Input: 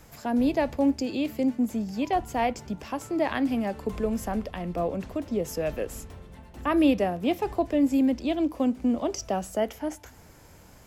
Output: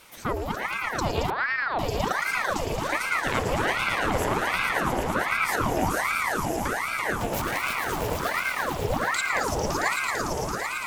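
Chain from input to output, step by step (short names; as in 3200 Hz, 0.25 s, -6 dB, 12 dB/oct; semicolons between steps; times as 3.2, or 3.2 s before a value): 7.19–7.8 zero-crossing step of -29.5 dBFS; HPF 310 Hz 12 dB/oct; negative-ratio compressor -29 dBFS, ratio -0.5; swelling echo 0.112 s, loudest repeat 5, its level -6.5 dB; Schroeder reverb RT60 3.9 s, combs from 31 ms, DRR 11.5 dB; 1.3–1.79 LPC vocoder at 8 kHz pitch kept; ring modulator with a swept carrier 1000 Hz, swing 85%, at 1.3 Hz; gain +3.5 dB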